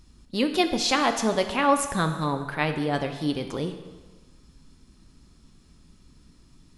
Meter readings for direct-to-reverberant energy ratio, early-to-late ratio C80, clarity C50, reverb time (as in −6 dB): 6.5 dB, 10.5 dB, 9.0 dB, 1.3 s